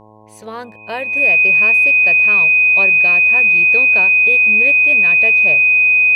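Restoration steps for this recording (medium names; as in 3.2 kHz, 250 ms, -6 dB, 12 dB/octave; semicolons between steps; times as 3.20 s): de-hum 107.5 Hz, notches 10; band-stop 2.5 kHz, Q 30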